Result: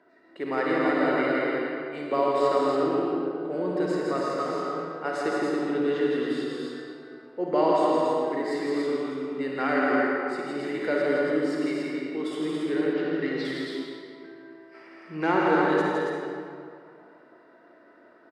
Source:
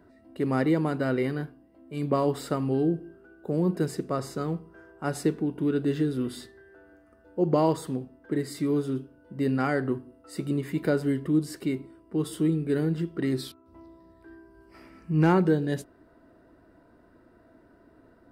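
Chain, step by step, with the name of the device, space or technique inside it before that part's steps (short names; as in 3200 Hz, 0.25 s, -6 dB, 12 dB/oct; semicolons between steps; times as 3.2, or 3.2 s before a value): station announcement (BPF 440–4800 Hz; bell 2000 Hz +4 dB 0.5 oct; loudspeakers at several distances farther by 56 m -4 dB, 96 m -4 dB; reverb RT60 2.4 s, pre-delay 45 ms, DRR -2 dB); 12.93–13.45 LPF 6100 Hz 24 dB/oct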